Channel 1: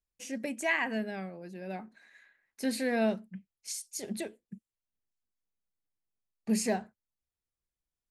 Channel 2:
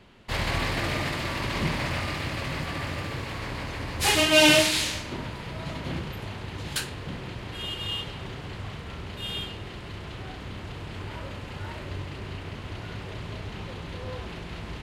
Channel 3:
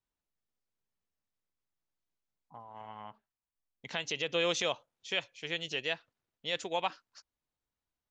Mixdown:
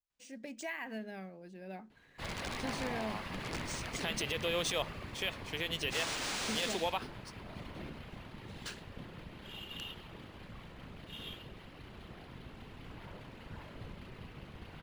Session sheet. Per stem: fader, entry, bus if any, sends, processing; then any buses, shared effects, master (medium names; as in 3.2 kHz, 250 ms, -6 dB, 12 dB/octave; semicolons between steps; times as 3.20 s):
-11.5 dB, 0.00 s, bus A, no send, compression 4:1, threshold -31 dBFS, peak gain reduction 7.5 dB
-17.0 dB, 1.90 s, no bus, no send, whisper effect; integer overflow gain 19 dB
-3.0 dB, 0.10 s, bus A, no send, none
bus A: 0.0 dB, treble shelf 4.4 kHz +5 dB; peak limiter -27 dBFS, peak gain reduction 8 dB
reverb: none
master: level rider gain up to 5 dB; decimation joined by straight lines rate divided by 3×